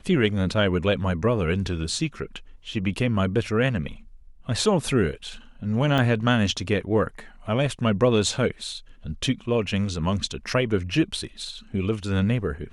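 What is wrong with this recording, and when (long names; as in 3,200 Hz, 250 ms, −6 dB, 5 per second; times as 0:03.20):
0:05.98: drop-out 3.5 ms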